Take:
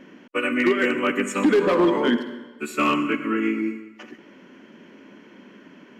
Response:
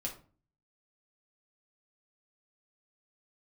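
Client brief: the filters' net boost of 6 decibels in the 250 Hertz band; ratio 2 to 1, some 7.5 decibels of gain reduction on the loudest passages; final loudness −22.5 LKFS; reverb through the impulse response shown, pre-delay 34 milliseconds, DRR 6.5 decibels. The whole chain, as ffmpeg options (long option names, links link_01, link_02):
-filter_complex "[0:a]equalizer=frequency=250:width_type=o:gain=7.5,acompressor=threshold=-23dB:ratio=2,asplit=2[link_01][link_02];[1:a]atrim=start_sample=2205,adelay=34[link_03];[link_02][link_03]afir=irnorm=-1:irlink=0,volume=-7dB[link_04];[link_01][link_04]amix=inputs=2:normalize=0,volume=-0.5dB"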